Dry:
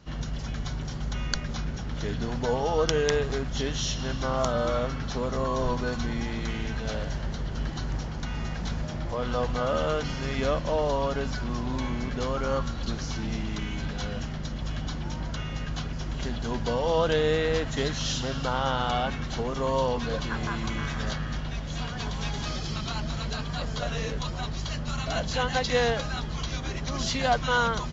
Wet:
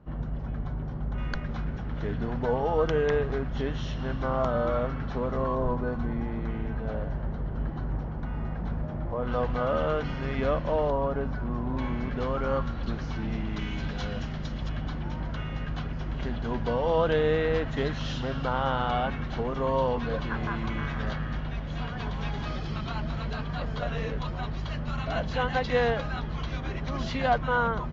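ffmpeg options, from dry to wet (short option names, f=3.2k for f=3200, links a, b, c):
-af "asetnsamples=n=441:p=0,asendcmd='1.18 lowpass f 1900;5.55 lowpass f 1200;9.27 lowpass f 2300;10.9 lowpass f 1300;11.77 lowpass f 2400;13.57 lowpass f 4200;14.69 lowpass f 2500;27.38 lowpass f 1600',lowpass=1.1k"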